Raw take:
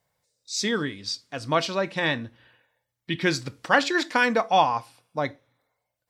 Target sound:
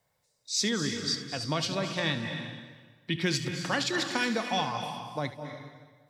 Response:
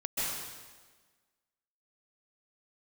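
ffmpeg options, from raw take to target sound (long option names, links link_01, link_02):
-filter_complex "[0:a]acrossover=split=230|3000[link_01][link_02][link_03];[link_02]acompressor=threshold=-35dB:ratio=2.5[link_04];[link_01][link_04][link_03]amix=inputs=3:normalize=0,asplit=2[link_05][link_06];[1:a]atrim=start_sample=2205,adelay=74[link_07];[link_06][link_07]afir=irnorm=-1:irlink=0,volume=-12dB[link_08];[link_05][link_08]amix=inputs=2:normalize=0"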